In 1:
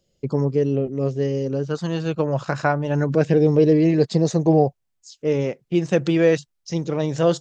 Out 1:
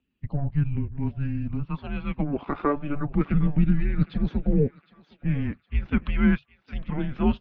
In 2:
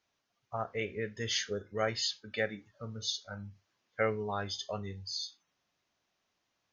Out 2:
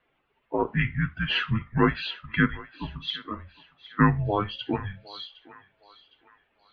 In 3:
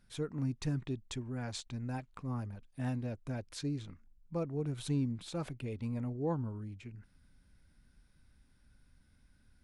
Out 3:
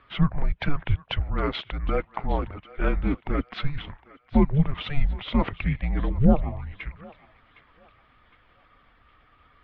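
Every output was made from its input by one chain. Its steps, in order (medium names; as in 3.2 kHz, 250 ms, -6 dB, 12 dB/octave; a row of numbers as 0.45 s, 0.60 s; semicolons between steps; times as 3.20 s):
coarse spectral quantiser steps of 15 dB; mistuned SSB -290 Hz 260–3300 Hz; thinning echo 761 ms, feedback 45%, high-pass 730 Hz, level -17 dB; normalise loudness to -27 LUFS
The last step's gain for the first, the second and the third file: -2.5 dB, +11.5 dB, +19.5 dB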